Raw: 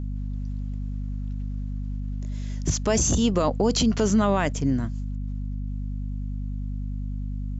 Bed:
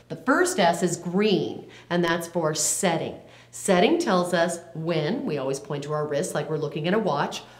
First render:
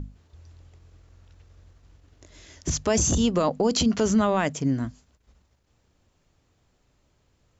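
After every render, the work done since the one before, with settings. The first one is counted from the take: notches 50/100/150/200/250 Hz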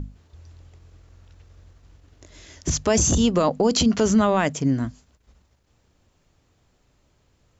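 gain +3 dB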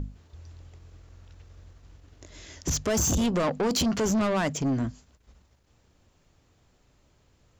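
soft clip -21.5 dBFS, distortion -9 dB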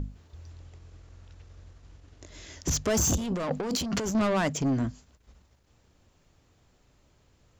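0.51–2.3 steep low-pass 11000 Hz; 3.16–4.15 negative-ratio compressor -30 dBFS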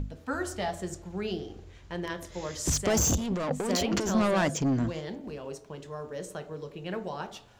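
add bed -12 dB

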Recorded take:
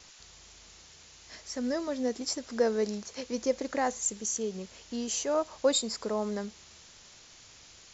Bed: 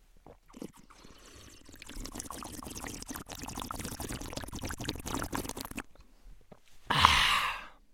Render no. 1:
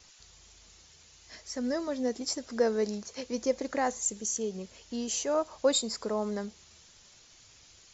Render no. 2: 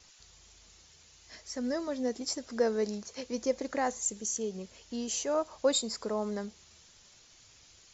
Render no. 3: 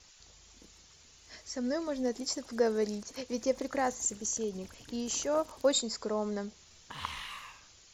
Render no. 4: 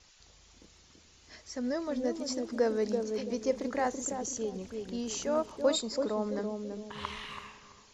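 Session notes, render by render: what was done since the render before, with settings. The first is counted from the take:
denoiser 6 dB, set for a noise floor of -54 dBFS
gain -1.5 dB
add bed -16.5 dB
air absorption 55 m; on a send: narrowing echo 0.333 s, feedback 41%, band-pass 300 Hz, level -3 dB

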